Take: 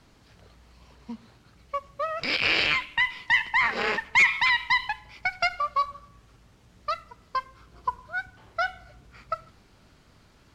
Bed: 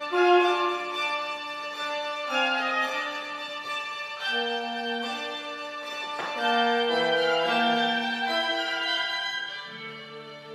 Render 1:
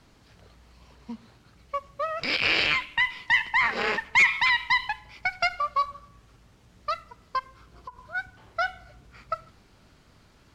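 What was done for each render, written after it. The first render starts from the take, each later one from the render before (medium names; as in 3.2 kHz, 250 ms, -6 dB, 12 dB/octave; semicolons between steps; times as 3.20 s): 7.39–8.15 s: compression, threshold -37 dBFS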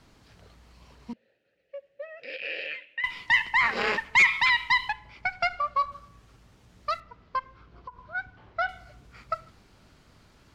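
1.13–3.04 s: vowel filter e; 4.92–5.92 s: low-pass 2.7 kHz 6 dB/octave; 7.00–8.69 s: distance through air 200 m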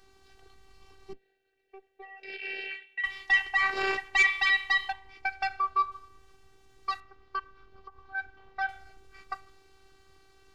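octave divider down 2 oct, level -5 dB; robot voice 388 Hz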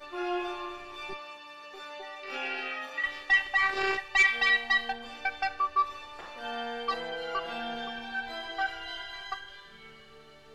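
add bed -12.5 dB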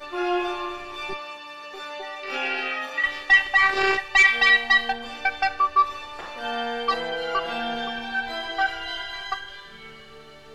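trim +7.5 dB; peak limiter -3 dBFS, peak gain reduction 2 dB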